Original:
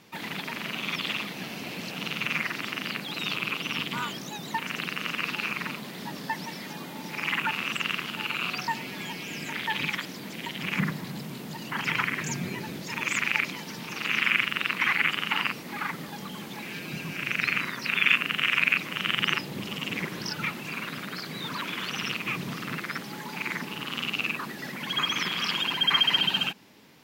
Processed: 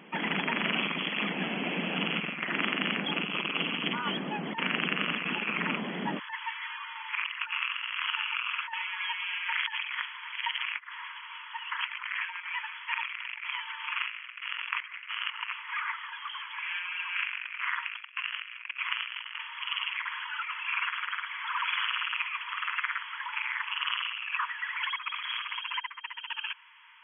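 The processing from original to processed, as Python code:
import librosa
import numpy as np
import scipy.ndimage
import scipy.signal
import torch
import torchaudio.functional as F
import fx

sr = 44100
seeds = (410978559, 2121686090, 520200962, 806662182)

y = fx.over_compress(x, sr, threshold_db=-33.0, ratio=-0.5)
y = fx.brickwall_bandpass(y, sr, low_hz=fx.steps((0.0, 150.0), (6.18, 880.0)), high_hz=3400.0)
y = F.gain(torch.from_numpy(y), 2.0).numpy()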